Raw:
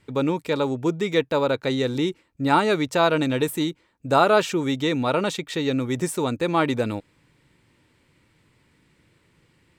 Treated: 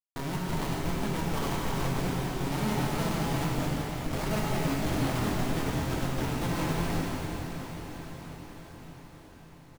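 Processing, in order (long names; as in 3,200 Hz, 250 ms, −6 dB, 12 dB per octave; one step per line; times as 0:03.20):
lower of the sound and its delayed copy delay 1 ms
low-pass filter 4,000 Hz 24 dB per octave
hum removal 111.6 Hz, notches 7
brickwall limiter −19.5 dBFS, peak gain reduction 9.5 dB
flanger 1.1 Hz, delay 5.4 ms, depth 2.8 ms, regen −57%
comparator with hysteresis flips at −29.5 dBFS
double-tracking delay 23 ms −10.5 dB
feedback delay with all-pass diffusion 531 ms, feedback 63%, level −8 dB
reverb whose tail is shaped and stops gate 470 ms flat, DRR −4.5 dB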